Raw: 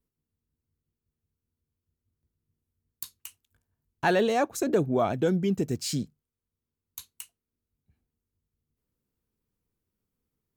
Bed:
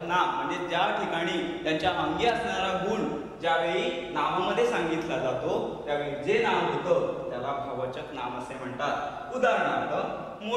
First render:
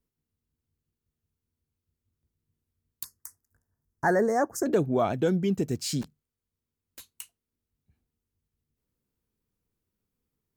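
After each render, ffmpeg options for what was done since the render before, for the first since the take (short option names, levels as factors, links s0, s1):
-filter_complex "[0:a]asettb=1/sr,asplit=3[s0][s1][s2];[s0]atrim=end=3.044[s3];[s1]atrim=start=3.04:end=4.66,asetpts=PTS-STARTPTS,afade=t=in:d=0.004:c=qsin,afade=t=out:st=1.616:d=0.004:c=qsin,asuperstop=centerf=3100:order=12:qfactor=1.1[s4];[s2]atrim=start=4.656[s5];[s3][s4]acrossfade=d=0.004:c1=hsin:c2=qsin[s6];[s6][s5]acrossfade=d=0.004:c1=qsin:c2=hsin,asplit=3[s7][s8][s9];[s7]afade=t=out:st=6.01:d=0.02[s10];[s8]aeval=exprs='(mod(63.1*val(0)+1,2)-1)/63.1':c=same,afade=t=in:st=6.01:d=0.02,afade=t=out:st=7.14:d=0.02[s11];[s9]afade=t=in:st=7.14:d=0.02[s12];[s10][s11][s12]amix=inputs=3:normalize=0"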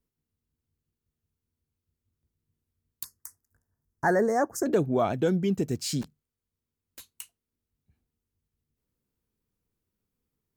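-af anull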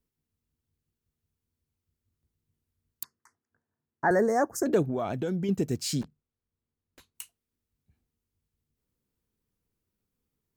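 -filter_complex "[0:a]asettb=1/sr,asplit=3[s0][s1][s2];[s0]atrim=end=3.034[s3];[s1]atrim=start=3.03:end=4.11,asetpts=PTS-STARTPTS,afade=t=in:d=0.004:c=qsin,afade=t=out:st=1.076:d=0.004:c=qsin,highpass=180,lowpass=2600[s4];[s2]atrim=start=4.106[s5];[s3][s4]acrossfade=d=0.004:c1=hsin:c2=qsin[s6];[s6][s5]acrossfade=d=0.004:c1=qsin:c2=hsin,asettb=1/sr,asplit=3[s7][s8][s9];[s7]atrim=end=4.824[s10];[s8]atrim=start=4.82:end=5.49,asetpts=PTS-STARTPTS,afade=t=in:d=0.004:c=qsin,afade=t=out:st=0.666:d=0.004:c=qsin,acompressor=threshold=0.0501:ratio=6:attack=3.2:release=140:knee=1:detection=peak[s11];[s9]atrim=start=5.486[s12];[s10][s11]acrossfade=d=0.004:c1=hsin:c2=qsin[s13];[s13][s12]acrossfade=d=0.004:c1=qsin:c2=hsin,asplit=3[s14][s15][s16];[s14]afade=t=out:st=6.01:d=0.02[s17];[s15]lowpass=f=1500:p=1,afade=t=in:st=6.01:d=0.02,afade=t=out:st=7.14:d=0.02[s18];[s16]afade=t=in:st=7.14:d=0.02[s19];[s17][s18][s19]amix=inputs=3:normalize=0"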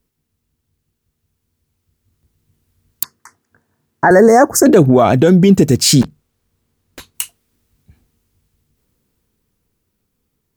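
-af "dynaudnorm=f=290:g=17:m=2.99,alimiter=level_in=4.22:limit=0.891:release=50:level=0:latency=1"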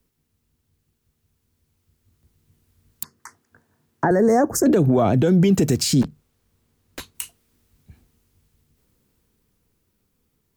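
-filter_complex "[0:a]acrossover=split=210|540[s0][s1][s2];[s0]acompressor=threshold=0.158:ratio=4[s3];[s1]acompressor=threshold=0.178:ratio=4[s4];[s2]acompressor=threshold=0.0708:ratio=4[s5];[s3][s4][s5]amix=inputs=3:normalize=0,alimiter=limit=0.335:level=0:latency=1:release=35"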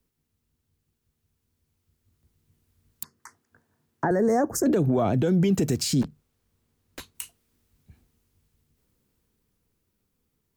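-af "volume=0.531"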